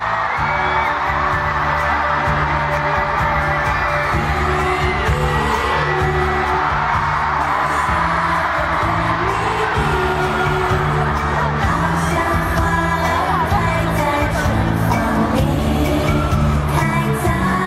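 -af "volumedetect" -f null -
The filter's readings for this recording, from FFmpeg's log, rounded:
mean_volume: -16.9 dB
max_volume: -5.5 dB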